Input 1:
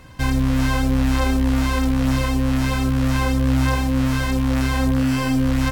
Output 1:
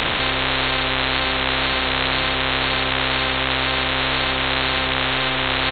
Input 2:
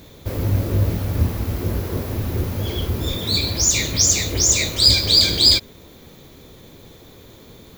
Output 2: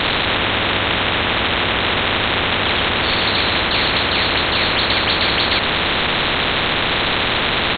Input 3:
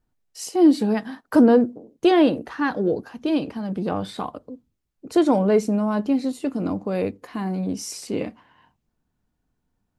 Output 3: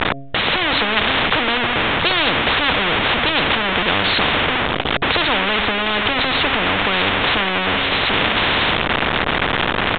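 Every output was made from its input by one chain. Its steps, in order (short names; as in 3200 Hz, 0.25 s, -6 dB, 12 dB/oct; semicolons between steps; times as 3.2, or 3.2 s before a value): zero-crossing step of -26.5 dBFS; de-hum 137.4 Hz, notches 5; downsampling 8000 Hz; spectral compressor 10:1; gain +3.5 dB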